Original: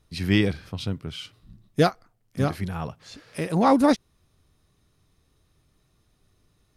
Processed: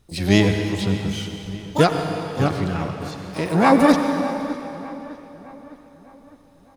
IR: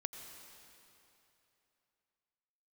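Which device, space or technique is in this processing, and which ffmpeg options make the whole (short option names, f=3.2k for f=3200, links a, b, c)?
shimmer-style reverb: -filter_complex "[0:a]asettb=1/sr,asplit=3[a][b][c];[a]atrim=end=1.834[d];[b]atrim=start=1.83:end=3.46,asetpts=PTS-STARTPTS,afade=t=in:d=0.004:c=qsin,afade=t=out:st=1.626:d=0.004:c=qsin,lowpass=f=8.1k:w=0.5412,lowpass=f=8.1k:w=1.3066[e];[c]atrim=start=3.456[f];[d][e]acrossfade=d=0.004:c1=hsin:c2=qsin[g];[g][f]acrossfade=d=0.004:c1=qsin:c2=hsin,asplit=2[h][i];[i]asetrate=88200,aresample=44100,atempo=0.5,volume=-9dB[j];[h][j]amix=inputs=2:normalize=0[k];[1:a]atrim=start_sample=2205[l];[k][l]afir=irnorm=-1:irlink=0,asplit=2[m][n];[n]adelay=607,lowpass=f=3.6k:p=1,volume=-17dB,asplit=2[o][p];[p]adelay=607,lowpass=f=3.6k:p=1,volume=0.52,asplit=2[q][r];[r]adelay=607,lowpass=f=3.6k:p=1,volume=0.52,asplit=2[s][t];[t]adelay=607,lowpass=f=3.6k:p=1,volume=0.52,asplit=2[u][v];[v]adelay=607,lowpass=f=3.6k:p=1,volume=0.52[w];[m][o][q][s][u][w]amix=inputs=6:normalize=0,volume=6dB"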